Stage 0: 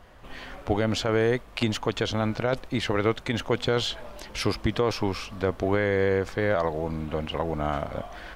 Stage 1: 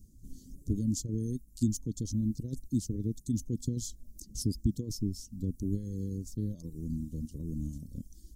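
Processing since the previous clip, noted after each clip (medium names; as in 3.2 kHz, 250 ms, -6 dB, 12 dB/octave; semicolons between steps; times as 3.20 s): reverb removal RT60 1 s; elliptic band-stop 260–6500 Hz, stop band 50 dB; treble shelf 4.8 kHz +4.5 dB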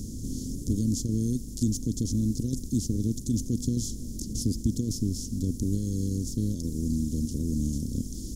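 spectral levelling over time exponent 0.4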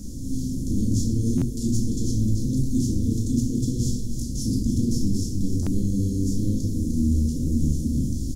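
delay 303 ms -10 dB; reverberation RT60 1.0 s, pre-delay 4 ms, DRR -4 dB; buffer glitch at 1.37/5.62 s, samples 512, times 3; trim -3.5 dB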